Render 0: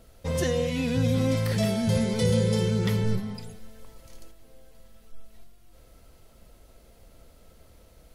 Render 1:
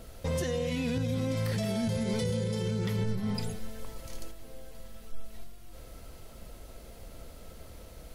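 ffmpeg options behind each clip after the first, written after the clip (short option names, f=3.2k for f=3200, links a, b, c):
-af "acompressor=threshold=-30dB:ratio=6,alimiter=level_in=5dB:limit=-24dB:level=0:latency=1:release=91,volume=-5dB,volume=6.5dB"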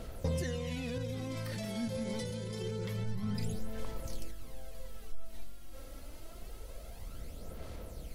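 -af "acompressor=threshold=-32dB:ratio=4,aphaser=in_gain=1:out_gain=1:delay=3.7:decay=0.48:speed=0.26:type=sinusoidal,volume=-2dB"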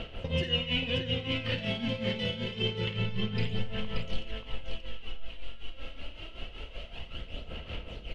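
-filter_complex "[0:a]lowpass=f=2.9k:t=q:w=10,tremolo=f=5.3:d=0.79,asplit=2[a][b];[b]aecho=0:1:53|84|580:0.282|0.15|0.531[c];[a][c]amix=inputs=2:normalize=0,volume=6dB"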